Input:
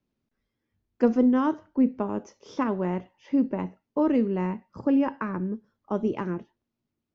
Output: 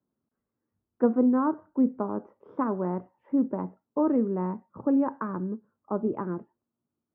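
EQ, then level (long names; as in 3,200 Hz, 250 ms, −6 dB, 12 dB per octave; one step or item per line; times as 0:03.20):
high-pass filter 56 Hz
Chebyshev low-pass filter 1,300 Hz, order 3
low-shelf EQ 85 Hz −11.5 dB
0.0 dB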